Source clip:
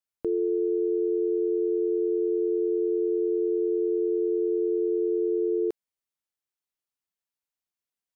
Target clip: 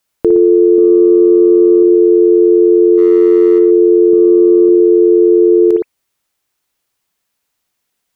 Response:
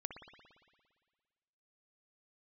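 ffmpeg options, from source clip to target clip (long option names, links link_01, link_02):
-filter_complex "[0:a]asettb=1/sr,asplit=3[link_01][link_02][link_03];[link_01]atrim=end=0.784[link_04];[link_02]atrim=start=0.78:end=1.83,asetpts=PTS-STARTPTS,afade=type=in:duration=0.004:curve=qsin,afade=type=out:start_time=1.046:duration=0.004:curve=qsin,lowshelf=frequency=420:gain=10[link_05];[link_03]atrim=start=1.826[link_06];[link_04][link_05]acrossfade=duration=0.004:curve1=hsin:curve2=qsin[link_07];[link_07][link_06]acrossfade=duration=0.004:curve1=qsin:curve2=hsin,asplit=3[link_08][link_09][link_10];[link_08]afade=type=out:start_time=2.97:duration=0.02[link_11];[link_09]asoftclip=type=hard:threshold=-21dB,afade=type=in:start_time=2.97:duration=0.02,afade=type=out:start_time=3.58:duration=0.02[link_12];[link_10]afade=type=in:start_time=3.58:duration=0.02[link_13];[link_11][link_12][link_13]amix=inputs=3:normalize=0,asettb=1/sr,asplit=3[link_14][link_15][link_16];[link_14]atrim=end=4.134[link_17];[link_15]atrim=start=4.13:end=4.69,asetpts=PTS-STARTPTS,afade=type=in:duration=0.004:curve=qsin,afade=type=out:start_time=0.556:duration=0.004:curve=qsin,equalizer=frequency=160:width_type=o:width=1.8:gain=14[link_18];[link_16]atrim=start=4.686[link_19];[link_17][link_18]acrossfade=duration=0.004:curve1=hsin:curve2=qsin[link_20];[link_20][link_19]acrossfade=duration=0.004:curve1=qsin:curve2=hsin[link_21];[1:a]atrim=start_sample=2205,afade=type=out:start_time=0.18:duration=0.01,atrim=end_sample=8379[link_22];[link_21][link_22]afir=irnorm=-1:irlink=0,acontrast=22,alimiter=level_in=20dB:limit=-1dB:release=50:level=0:latency=1,volume=-1dB"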